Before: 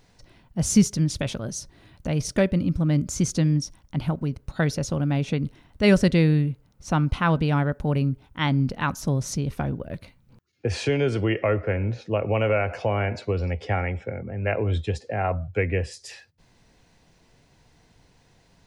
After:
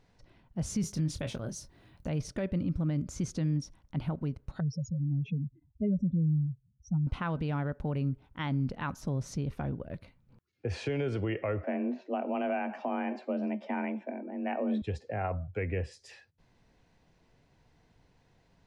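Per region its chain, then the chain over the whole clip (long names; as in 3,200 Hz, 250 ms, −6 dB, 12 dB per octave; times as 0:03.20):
0:00.81–0:02.09: high-shelf EQ 9,500 Hz +11.5 dB + double-tracking delay 25 ms −9 dB
0:04.60–0:07.07: expanding power law on the bin magnitudes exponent 3.3 + high-pass filter 63 Hz
0:11.64–0:14.82: high-shelf EQ 3,900 Hz −9 dB + hum removal 243.9 Hz, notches 36 + frequency shifter +130 Hz
whole clip: brickwall limiter −16 dBFS; high-shelf EQ 4,500 Hz −11 dB; level −6.5 dB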